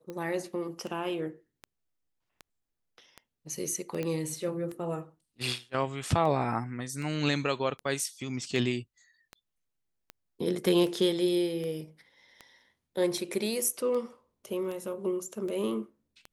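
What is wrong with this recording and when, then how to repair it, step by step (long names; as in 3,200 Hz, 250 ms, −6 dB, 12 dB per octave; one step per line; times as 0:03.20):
scratch tick 78 rpm −26 dBFS
0:04.03: click −20 dBFS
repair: click removal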